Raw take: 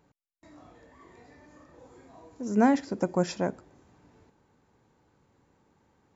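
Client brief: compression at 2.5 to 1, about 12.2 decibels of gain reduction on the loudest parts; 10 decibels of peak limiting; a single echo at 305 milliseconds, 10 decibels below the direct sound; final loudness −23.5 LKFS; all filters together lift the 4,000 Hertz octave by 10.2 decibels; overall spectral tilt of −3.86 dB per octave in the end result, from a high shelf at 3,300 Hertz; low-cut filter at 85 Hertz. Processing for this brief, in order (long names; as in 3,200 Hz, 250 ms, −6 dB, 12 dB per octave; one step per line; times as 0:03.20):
high-pass filter 85 Hz
high-shelf EQ 3,300 Hz +8.5 dB
parametric band 4,000 Hz +6.5 dB
downward compressor 2.5 to 1, threshold −36 dBFS
brickwall limiter −31 dBFS
single-tap delay 305 ms −10 dB
level +21 dB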